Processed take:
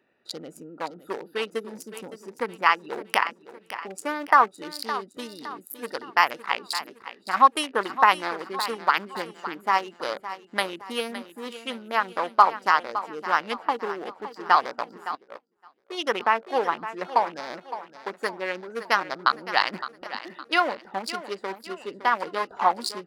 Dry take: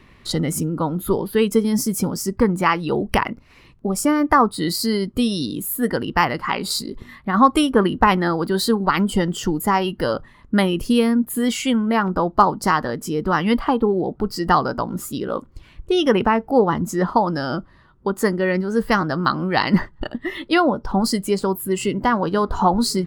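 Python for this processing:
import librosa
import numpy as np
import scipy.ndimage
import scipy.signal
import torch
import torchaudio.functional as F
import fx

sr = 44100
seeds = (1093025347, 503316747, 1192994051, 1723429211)

y = fx.wiener(x, sr, points=41)
y = scipy.signal.sosfilt(scipy.signal.butter(2, 820.0, 'highpass', fs=sr, output='sos'), y)
y = fx.echo_feedback(y, sr, ms=563, feedback_pct=42, wet_db=-13.0)
y = fx.upward_expand(y, sr, threshold_db=-42.0, expansion=2.5, at=(15.15, 16.01))
y = y * librosa.db_to_amplitude(1.0)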